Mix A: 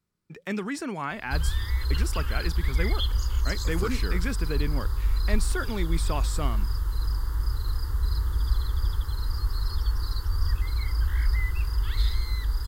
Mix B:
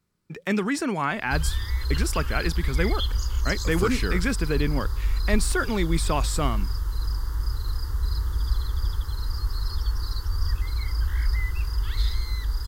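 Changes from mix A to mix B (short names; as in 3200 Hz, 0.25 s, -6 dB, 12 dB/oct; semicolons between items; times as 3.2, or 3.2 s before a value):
speech +6.0 dB; background: add bell 5800 Hz +5.5 dB 0.49 oct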